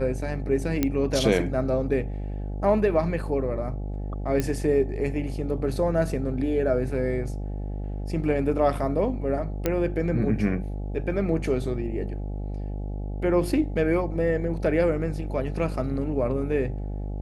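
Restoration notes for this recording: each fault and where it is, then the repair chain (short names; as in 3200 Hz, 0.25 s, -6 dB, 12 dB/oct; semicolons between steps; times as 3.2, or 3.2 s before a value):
buzz 50 Hz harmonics 17 -31 dBFS
0.83 pop -9 dBFS
4.4 pop -12 dBFS
9.66 pop -10 dBFS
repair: de-click; de-hum 50 Hz, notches 17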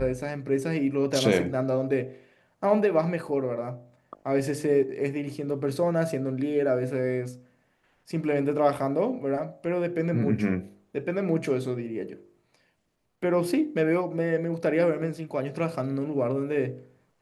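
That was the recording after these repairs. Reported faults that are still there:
none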